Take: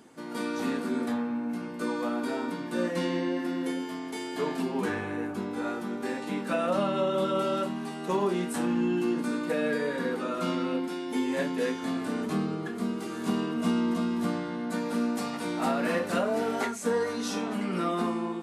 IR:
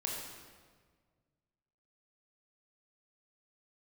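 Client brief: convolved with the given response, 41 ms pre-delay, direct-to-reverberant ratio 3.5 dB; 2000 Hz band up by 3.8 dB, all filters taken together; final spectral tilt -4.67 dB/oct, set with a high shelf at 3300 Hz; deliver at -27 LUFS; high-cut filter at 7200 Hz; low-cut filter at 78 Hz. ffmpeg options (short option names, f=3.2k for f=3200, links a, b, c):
-filter_complex "[0:a]highpass=78,lowpass=7.2k,equalizer=f=2k:t=o:g=6.5,highshelf=f=3.3k:g=-5,asplit=2[a][b];[1:a]atrim=start_sample=2205,adelay=41[c];[b][c]afir=irnorm=-1:irlink=0,volume=-6dB[d];[a][d]amix=inputs=2:normalize=0,volume=0.5dB"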